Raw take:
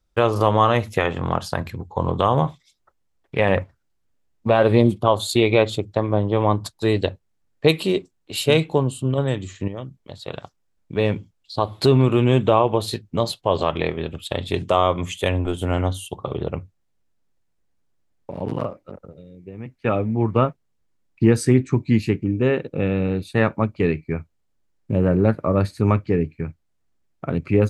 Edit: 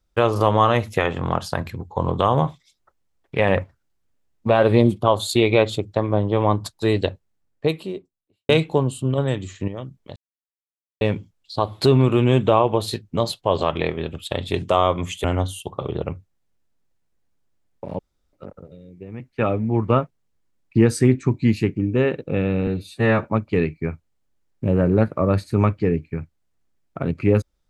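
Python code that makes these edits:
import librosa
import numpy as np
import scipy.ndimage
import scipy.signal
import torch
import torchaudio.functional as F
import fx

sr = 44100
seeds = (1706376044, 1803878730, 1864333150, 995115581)

y = fx.studio_fade_out(x, sr, start_s=7.06, length_s=1.43)
y = fx.edit(y, sr, fx.silence(start_s=10.16, length_s=0.85),
    fx.cut(start_s=15.24, length_s=0.46),
    fx.room_tone_fill(start_s=18.45, length_s=0.34),
    fx.stretch_span(start_s=23.13, length_s=0.38, factor=1.5), tone=tone)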